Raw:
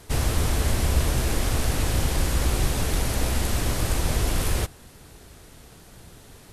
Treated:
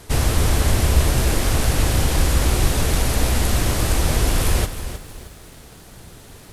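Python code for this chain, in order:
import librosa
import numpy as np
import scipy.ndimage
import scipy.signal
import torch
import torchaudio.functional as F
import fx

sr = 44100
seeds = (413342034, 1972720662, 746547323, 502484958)

y = fx.echo_crushed(x, sr, ms=314, feedback_pct=35, bits=8, wet_db=-11)
y = y * librosa.db_to_amplitude(5.0)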